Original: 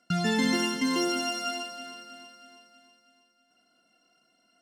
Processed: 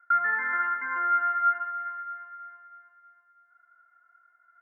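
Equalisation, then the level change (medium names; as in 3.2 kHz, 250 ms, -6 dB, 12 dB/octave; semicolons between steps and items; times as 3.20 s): resonant high-pass 1.4 kHz, resonance Q 5.1; steep low-pass 2 kHz 72 dB/octave; 0.0 dB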